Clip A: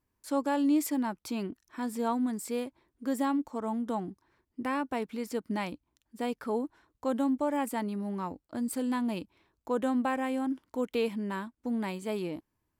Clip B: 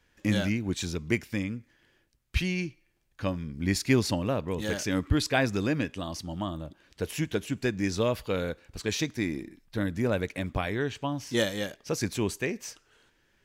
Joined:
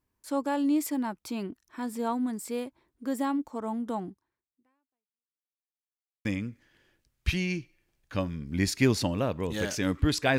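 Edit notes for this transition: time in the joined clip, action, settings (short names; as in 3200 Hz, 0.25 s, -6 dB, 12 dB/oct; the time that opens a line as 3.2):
clip A
4.07–5.57 fade out exponential
5.57–6.25 mute
6.25 switch to clip B from 1.33 s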